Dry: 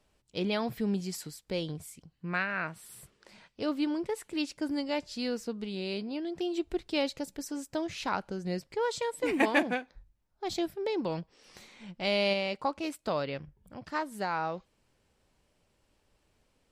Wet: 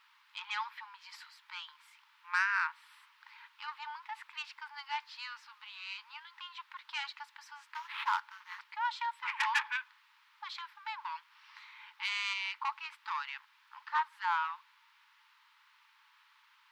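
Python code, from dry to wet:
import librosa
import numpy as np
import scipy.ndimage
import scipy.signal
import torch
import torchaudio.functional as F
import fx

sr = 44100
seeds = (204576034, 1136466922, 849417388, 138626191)

y = fx.sample_hold(x, sr, seeds[0], rate_hz=6200.0, jitter_pct=20, at=(7.7, 8.61))
y = fx.dmg_noise_colour(y, sr, seeds[1], colour='white', level_db=-61.0)
y = fx.air_absorb(y, sr, metres=360.0)
y = 10.0 ** (-26.5 / 20.0) * np.tanh(y / 10.0 ** (-26.5 / 20.0))
y = fx.brickwall_highpass(y, sr, low_hz=840.0)
y = y * librosa.db_to_amplitude(7.0)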